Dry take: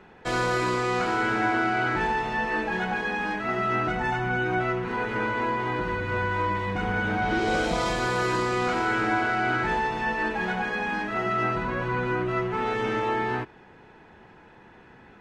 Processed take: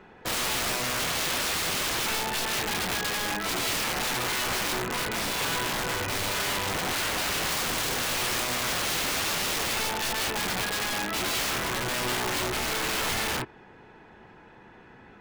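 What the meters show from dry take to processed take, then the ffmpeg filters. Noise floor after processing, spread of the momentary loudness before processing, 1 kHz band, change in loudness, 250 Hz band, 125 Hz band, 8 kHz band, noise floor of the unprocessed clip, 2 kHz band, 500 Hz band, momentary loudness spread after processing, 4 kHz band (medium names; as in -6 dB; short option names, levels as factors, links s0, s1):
-52 dBFS, 4 LU, -6.0 dB, -0.5 dB, -7.0 dB, -6.0 dB, +17.0 dB, -52 dBFS, -3.0 dB, -6.0 dB, 2 LU, +10.5 dB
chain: -af "bandreject=f=82.18:t=h:w=4,bandreject=f=164.36:t=h:w=4,aeval=exprs='(mod(15*val(0)+1,2)-1)/15':c=same"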